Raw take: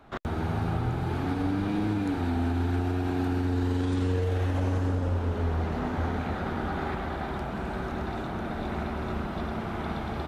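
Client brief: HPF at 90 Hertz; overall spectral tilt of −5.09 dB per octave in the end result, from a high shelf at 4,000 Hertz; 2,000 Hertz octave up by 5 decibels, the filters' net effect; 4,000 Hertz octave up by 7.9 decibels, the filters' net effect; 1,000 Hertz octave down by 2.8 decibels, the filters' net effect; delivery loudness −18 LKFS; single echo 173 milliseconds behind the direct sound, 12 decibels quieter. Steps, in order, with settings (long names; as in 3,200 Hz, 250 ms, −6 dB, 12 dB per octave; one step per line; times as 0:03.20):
high-pass filter 90 Hz
parametric band 1,000 Hz −6.5 dB
parametric band 2,000 Hz +7 dB
high-shelf EQ 4,000 Hz +6 dB
parametric band 4,000 Hz +4.5 dB
single-tap delay 173 ms −12 dB
level +12.5 dB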